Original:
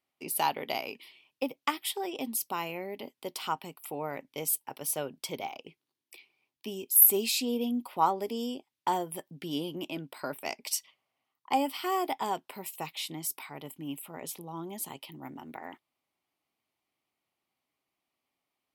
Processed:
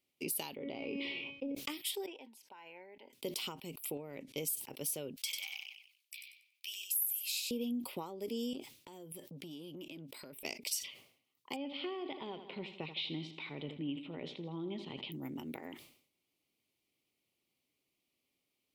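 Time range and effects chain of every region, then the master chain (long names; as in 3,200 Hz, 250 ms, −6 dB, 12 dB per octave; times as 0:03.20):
0:00.56–0:01.55: head-to-tape spacing loss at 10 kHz 45 dB + tuned comb filter 280 Hz, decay 0.47 s, mix 80% + envelope flattener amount 100%
0:02.06–0:03.13: pair of resonant band-passes 1,200 Hz, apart 0.75 octaves + downward compressor, threshold −43 dBFS
0:03.97–0:04.37: low-pass filter 11,000 Hz + downward compressor 5 to 1, threshold −39 dBFS
0:05.16–0:07.51: high-pass filter 1,400 Hz 24 dB per octave + repeating echo 94 ms, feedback 27%, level −5 dB
0:08.53–0:10.45: downward compressor 12 to 1, threshold −45 dBFS + saturating transformer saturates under 1,700 Hz
0:11.56–0:15.12: Chebyshev low-pass filter 3,800 Hz, order 4 + repeating echo 81 ms, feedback 56%, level −13.5 dB
whole clip: downward compressor 5 to 1, threshold −38 dBFS; flat-topped bell 1,100 Hz −11.5 dB; level that may fall only so fast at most 100 dB per second; level +3 dB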